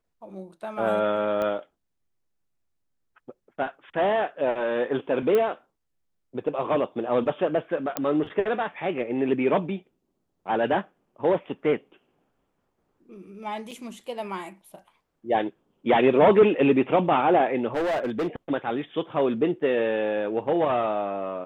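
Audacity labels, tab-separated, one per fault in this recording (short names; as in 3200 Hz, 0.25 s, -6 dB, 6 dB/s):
1.420000	1.420000	pop -17 dBFS
5.350000	5.350000	pop -14 dBFS
7.970000	7.970000	pop -10 dBFS
13.710000	13.720000	gap 6.1 ms
17.740000	18.280000	clipped -22.5 dBFS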